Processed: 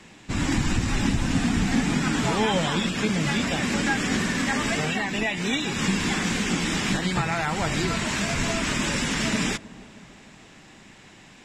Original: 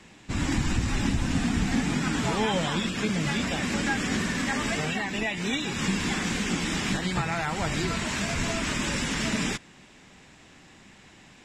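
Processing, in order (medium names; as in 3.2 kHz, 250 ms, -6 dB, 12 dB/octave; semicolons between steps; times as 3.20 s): peaking EQ 64 Hz -4.5 dB 0.77 oct; on a send: feedback echo behind a low-pass 310 ms, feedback 59%, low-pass 990 Hz, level -19 dB; on the sum: trim +3 dB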